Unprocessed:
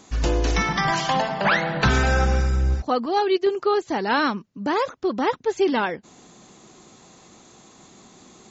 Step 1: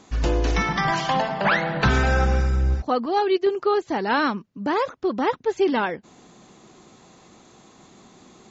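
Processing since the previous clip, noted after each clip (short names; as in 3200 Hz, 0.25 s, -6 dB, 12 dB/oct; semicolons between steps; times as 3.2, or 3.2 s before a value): high shelf 6700 Hz -10.5 dB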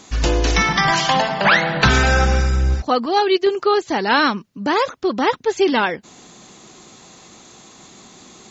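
high shelf 2200 Hz +9.5 dB; gain +3.5 dB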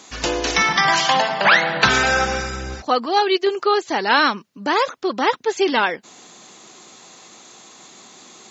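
HPF 430 Hz 6 dB/oct; gain +1 dB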